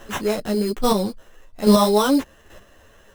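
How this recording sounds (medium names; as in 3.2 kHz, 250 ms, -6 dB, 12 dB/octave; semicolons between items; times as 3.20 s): chopped level 1.2 Hz, depth 60%, duty 10%; aliases and images of a low sample rate 4.6 kHz, jitter 0%; a shimmering, thickened sound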